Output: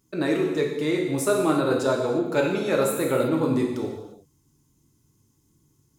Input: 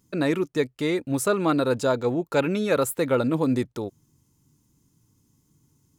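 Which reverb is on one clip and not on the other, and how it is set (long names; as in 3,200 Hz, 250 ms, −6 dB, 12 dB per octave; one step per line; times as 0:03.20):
reverb whose tail is shaped and stops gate 380 ms falling, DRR −0.5 dB
level −3 dB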